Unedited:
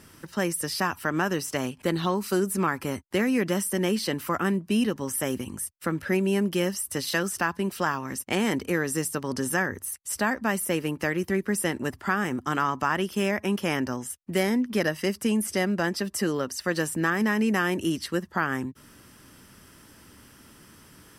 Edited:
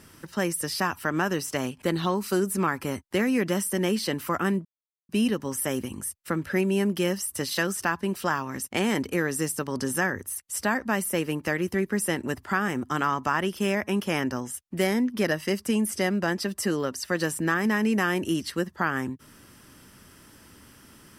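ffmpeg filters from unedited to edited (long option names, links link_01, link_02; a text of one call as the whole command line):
ffmpeg -i in.wav -filter_complex "[0:a]asplit=2[link_01][link_02];[link_01]atrim=end=4.65,asetpts=PTS-STARTPTS,afade=type=out:start_time=4.646:duration=0.004:curve=hsin,apad=pad_dur=0.44[link_03];[link_02]atrim=start=4.65,asetpts=PTS-STARTPTS,afade=type=in:duration=0.004:curve=hsin[link_04];[link_03][link_04]concat=n=2:v=0:a=1" out.wav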